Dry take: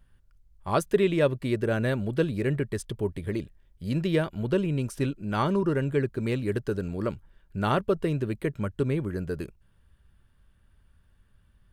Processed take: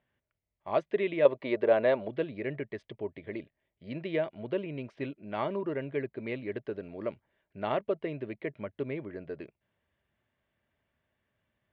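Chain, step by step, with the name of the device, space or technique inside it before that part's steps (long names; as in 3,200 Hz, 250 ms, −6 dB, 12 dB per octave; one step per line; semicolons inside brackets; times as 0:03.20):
kitchen radio (loudspeaker in its box 180–3,500 Hz, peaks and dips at 180 Hz −6 dB, 640 Hz +9 dB, 1,400 Hz −6 dB, 2,100 Hz +8 dB)
0:01.25–0:02.08: octave-band graphic EQ 125/500/1,000/4,000 Hz −4/+7/+10/+6 dB
level −7 dB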